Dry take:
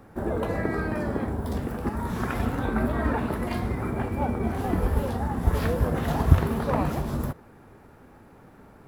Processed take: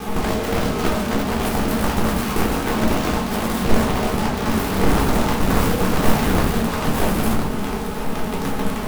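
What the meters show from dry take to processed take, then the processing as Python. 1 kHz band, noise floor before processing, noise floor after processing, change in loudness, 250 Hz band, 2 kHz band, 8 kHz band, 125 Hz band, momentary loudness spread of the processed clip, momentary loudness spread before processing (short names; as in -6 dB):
+8.5 dB, -51 dBFS, -25 dBFS, +6.0 dB, +8.0 dB, +9.5 dB, +18.0 dB, +3.0 dB, 6 LU, 6 LU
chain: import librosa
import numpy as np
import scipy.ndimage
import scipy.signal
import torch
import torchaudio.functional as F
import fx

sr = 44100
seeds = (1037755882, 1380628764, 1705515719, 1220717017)

p1 = scipy.signal.sosfilt(scipy.signal.cheby1(3, 1.0, [1400.0, 8500.0], 'bandstop', fs=sr, output='sos'), x)
p2 = fx.high_shelf(p1, sr, hz=9500.0, db=6.0)
p3 = p2 + 0.77 * np.pad(p2, (int(4.7 * sr / 1000.0), 0))[:len(p2)]
p4 = fx.rider(p3, sr, range_db=10, speed_s=0.5)
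p5 = p3 + (p4 * 10.0 ** (-2.0 / 20.0))
p6 = fx.fuzz(p5, sr, gain_db=38.0, gate_db=-47.0)
p7 = fx.quant_companded(p6, sr, bits=2)
p8 = 10.0 ** (-8.0 / 20.0) * np.tanh(p7 / 10.0 ** (-8.0 / 20.0))
p9 = fx.room_shoebox(p8, sr, seeds[0], volume_m3=410.0, walls='furnished', distance_m=3.8)
p10 = fx.doppler_dist(p9, sr, depth_ms=0.5)
y = p10 * 10.0 ** (-6.5 / 20.0)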